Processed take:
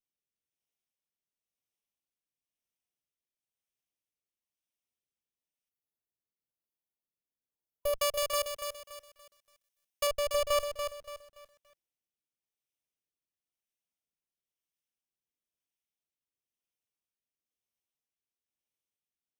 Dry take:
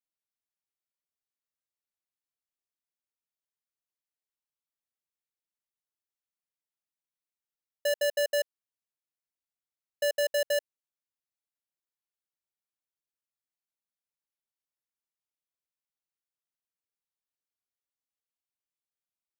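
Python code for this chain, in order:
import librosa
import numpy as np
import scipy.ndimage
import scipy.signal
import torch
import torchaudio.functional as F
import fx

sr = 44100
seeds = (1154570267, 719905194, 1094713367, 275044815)

y = fx.lower_of_two(x, sr, delay_ms=0.34)
y = fx.spec_box(y, sr, start_s=5.7, length_s=2.24, low_hz=1000.0, high_hz=10000.0, gain_db=-11)
y = fx.tilt_eq(y, sr, slope=2.0, at=(7.98, 10.07))
y = fx.rider(y, sr, range_db=10, speed_s=0.5)
y = fx.rotary(y, sr, hz=1.0)
y = fx.echo_crushed(y, sr, ms=286, feedback_pct=35, bits=11, wet_db=-7)
y = F.gain(torch.from_numpy(y), 4.0).numpy()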